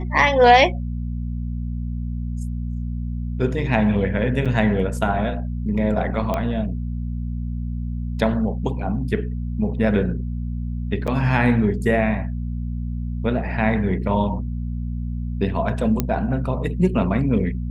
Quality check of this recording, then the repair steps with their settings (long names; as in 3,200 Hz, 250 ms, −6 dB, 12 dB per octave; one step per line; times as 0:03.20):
mains hum 60 Hz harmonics 4 −26 dBFS
0:04.45–0:04.46: drop-out 6.5 ms
0:06.34: click −11 dBFS
0:11.07–0:11.08: drop-out 6.8 ms
0:16.00: click −6 dBFS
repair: click removal
hum removal 60 Hz, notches 4
repair the gap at 0:04.45, 6.5 ms
repair the gap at 0:11.07, 6.8 ms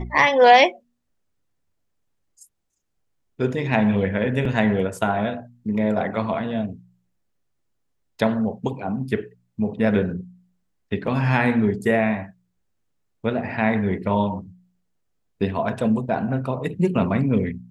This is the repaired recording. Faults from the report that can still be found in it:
none of them is left